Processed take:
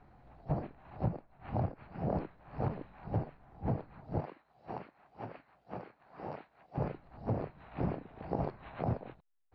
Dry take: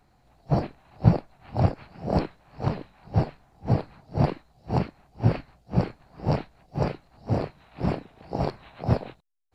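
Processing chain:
low-pass filter 2,000 Hz 12 dB per octave
downward compressor 8 to 1, threshold −34 dBFS, peak gain reduction 23.5 dB
0:04.20–0:06.78: high-pass filter 790 Hz 6 dB per octave
level +3 dB

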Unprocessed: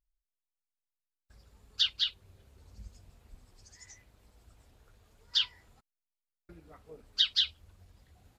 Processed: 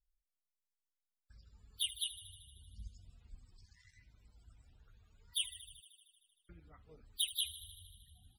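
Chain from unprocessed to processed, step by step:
gap after every zero crossing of 0.095 ms
parametric band 500 Hz −11 dB 2.6 octaves
delay with a high-pass on its return 77 ms, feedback 75%, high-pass 3,500 Hz, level −12 dB
spectral peaks only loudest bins 64

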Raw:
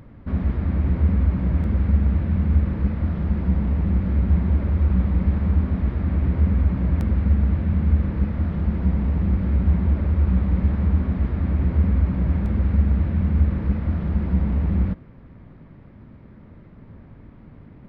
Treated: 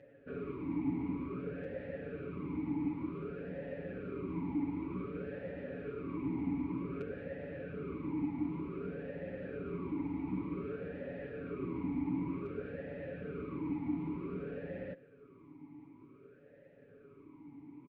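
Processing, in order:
comb filter 7.1 ms, depth 81%
formant filter swept between two vowels e-u 0.54 Hz
level +2 dB

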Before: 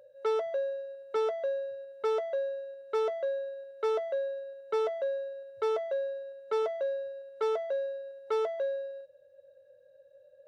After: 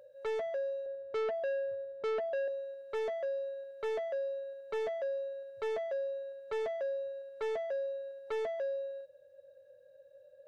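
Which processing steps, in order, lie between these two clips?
0:00.86–0:02.48: spectral tilt −3.5 dB per octave
soft clipping −31 dBFS, distortion −9 dB

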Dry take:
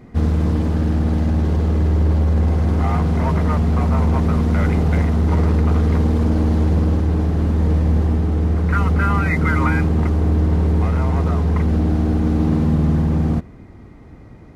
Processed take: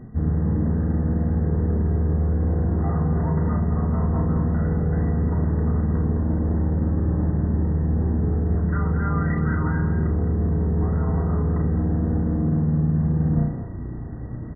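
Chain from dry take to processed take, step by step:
low-shelf EQ 370 Hz +5.5 dB
flutter between parallel walls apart 5.7 metres, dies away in 0.43 s
reversed playback
downward compressor 16 to 1, threshold −21 dBFS, peak gain reduction 15 dB
reversed playback
linear-phase brick-wall low-pass 2,000 Hz
parametric band 130 Hz +4.5 dB 2.6 octaves
hum removal 45.09 Hz, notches 32
far-end echo of a speakerphone 210 ms, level −8 dB

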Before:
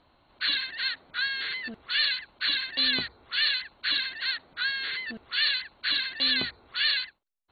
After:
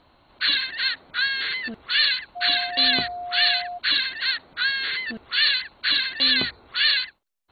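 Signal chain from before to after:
0:02.35–0:03.77: steady tone 710 Hz −35 dBFS
level +5.5 dB

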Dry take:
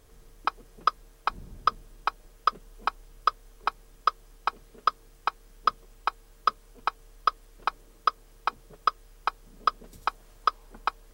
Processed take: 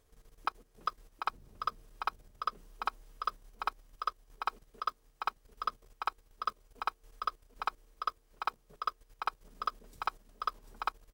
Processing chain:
one scale factor per block 7 bits
mains-hum notches 60/120/180/240/300/360 Hz
output level in coarse steps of 13 dB
on a send: single-tap delay 743 ms −6.5 dB
on the sum: level −4 dB

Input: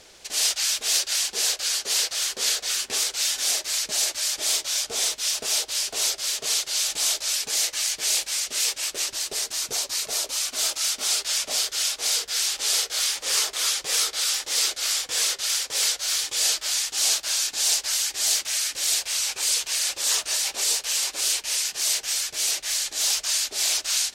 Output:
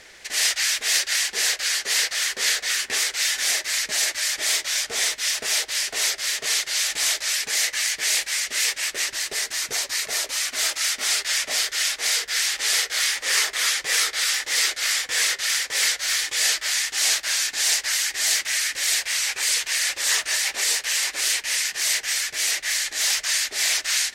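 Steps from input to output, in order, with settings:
parametric band 1,900 Hz +13.5 dB 0.65 octaves

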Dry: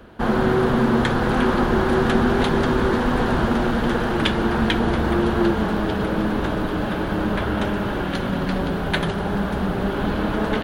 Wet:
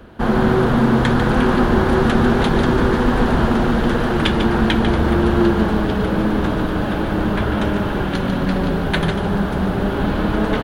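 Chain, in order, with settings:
low-shelf EQ 240 Hz +3.5 dB
single-tap delay 147 ms −8 dB
level +1.5 dB

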